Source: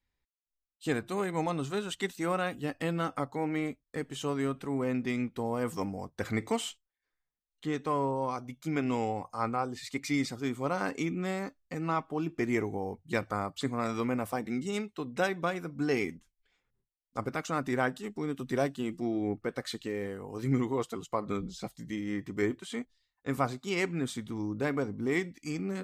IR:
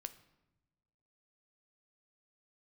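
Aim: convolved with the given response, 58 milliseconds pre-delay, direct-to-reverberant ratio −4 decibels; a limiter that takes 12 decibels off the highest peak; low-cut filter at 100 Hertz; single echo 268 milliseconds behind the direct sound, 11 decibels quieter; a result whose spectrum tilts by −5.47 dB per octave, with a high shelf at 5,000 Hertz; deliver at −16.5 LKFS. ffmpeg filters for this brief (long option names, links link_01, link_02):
-filter_complex "[0:a]highpass=100,highshelf=frequency=5000:gain=-7.5,alimiter=level_in=2dB:limit=-24dB:level=0:latency=1,volume=-2dB,aecho=1:1:268:0.282,asplit=2[link_01][link_02];[1:a]atrim=start_sample=2205,adelay=58[link_03];[link_02][link_03]afir=irnorm=-1:irlink=0,volume=8dB[link_04];[link_01][link_04]amix=inputs=2:normalize=0,volume=15dB"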